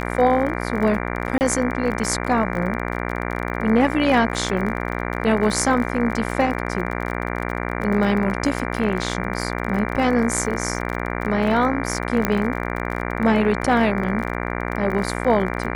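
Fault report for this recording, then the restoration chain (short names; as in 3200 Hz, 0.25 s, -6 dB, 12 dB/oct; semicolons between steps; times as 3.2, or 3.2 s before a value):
buzz 60 Hz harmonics 39 -26 dBFS
crackle 35/s -27 dBFS
1.38–1.41 gap 29 ms
12.25 pop -5 dBFS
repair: de-click; de-hum 60 Hz, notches 39; interpolate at 1.38, 29 ms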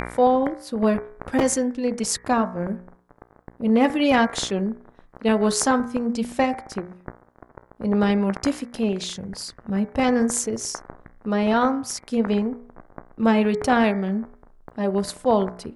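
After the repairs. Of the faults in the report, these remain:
none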